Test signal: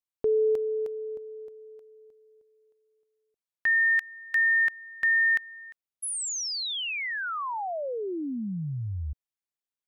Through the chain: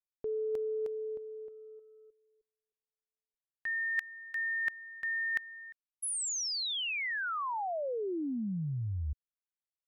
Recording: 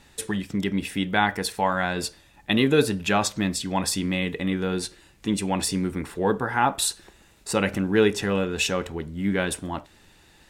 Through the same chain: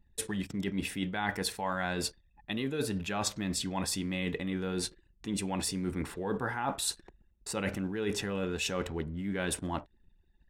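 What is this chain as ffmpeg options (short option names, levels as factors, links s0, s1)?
-af "anlmdn=0.0158,lowshelf=f=120:g=2.5,areverse,acompressor=threshold=0.0282:ratio=12:attack=50:release=110:knee=1:detection=peak,areverse,volume=0.708"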